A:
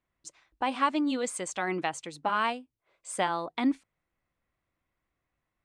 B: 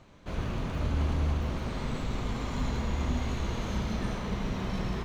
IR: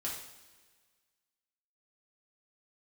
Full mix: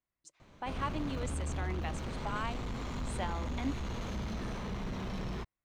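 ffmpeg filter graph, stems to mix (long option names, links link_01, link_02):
-filter_complex "[0:a]volume=-10.5dB[link_01];[1:a]asoftclip=type=tanh:threshold=-30dB,adelay=400,volume=-2.5dB[link_02];[link_01][link_02]amix=inputs=2:normalize=0"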